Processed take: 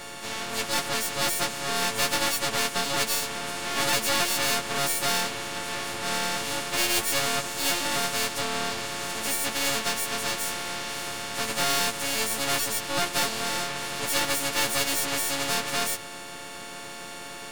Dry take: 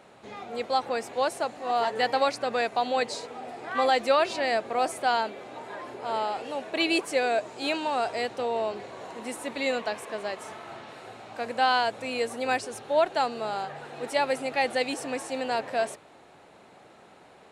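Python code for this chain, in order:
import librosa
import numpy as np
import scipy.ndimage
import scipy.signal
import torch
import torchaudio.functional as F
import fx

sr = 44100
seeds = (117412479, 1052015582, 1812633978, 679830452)

y = fx.freq_snap(x, sr, grid_st=4)
y = np.maximum(y, 0.0)
y = fx.spectral_comp(y, sr, ratio=2.0)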